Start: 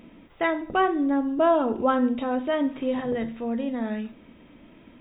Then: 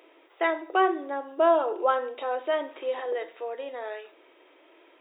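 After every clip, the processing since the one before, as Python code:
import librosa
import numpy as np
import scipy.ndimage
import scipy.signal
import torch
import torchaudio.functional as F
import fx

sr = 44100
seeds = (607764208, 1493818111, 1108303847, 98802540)

y = scipy.signal.sosfilt(scipy.signal.ellip(4, 1.0, 40, 350.0, 'highpass', fs=sr, output='sos'), x)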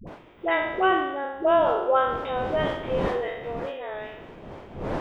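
y = fx.spec_trails(x, sr, decay_s=0.94)
y = fx.dmg_wind(y, sr, seeds[0], corner_hz=580.0, level_db=-36.0)
y = fx.dispersion(y, sr, late='highs', ms=73.0, hz=460.0)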